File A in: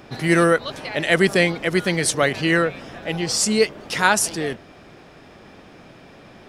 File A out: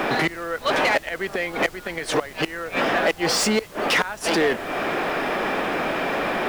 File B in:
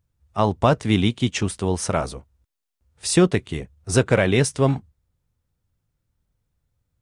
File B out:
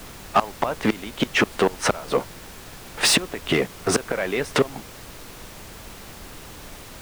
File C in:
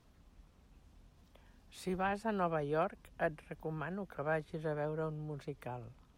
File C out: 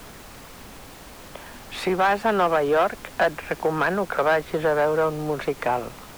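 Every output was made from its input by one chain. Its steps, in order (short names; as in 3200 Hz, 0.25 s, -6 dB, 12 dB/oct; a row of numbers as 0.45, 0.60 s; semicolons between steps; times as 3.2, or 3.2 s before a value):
tone controls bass +1 dB, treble -13 dB; flipped gate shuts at -11 dBFS, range -30 dB; compressor 3:1, threshold -39 dBFS; overdrive pedal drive 22 dB, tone 2700 Hz, clips at -21 dBFS; HPF 180 Hz 12 dB/oct; high shelf 9200 Hz +8.5 dB; added noise pink -56 dBFS; match loudness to -23 LUFS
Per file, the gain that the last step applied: +11.5, +15.5, +12.5 dB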